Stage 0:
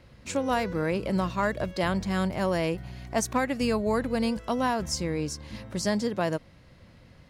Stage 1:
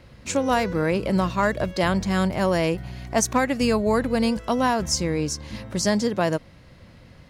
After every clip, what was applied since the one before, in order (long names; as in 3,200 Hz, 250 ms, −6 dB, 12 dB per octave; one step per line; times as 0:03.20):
dynamic equaliser 6,300 Hz, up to +4 dB, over −51 dBFS, Q 3
level +5 dB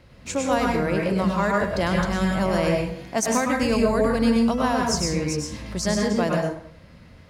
dense smooth reverb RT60 0.59 s, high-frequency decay 0.65×, pre-delay 90 ms, DRR −1 dB
level −3 dB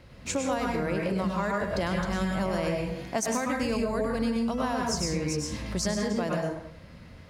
downward compressor, threshold −25 dBFS, peak gain reduction 10.5 dB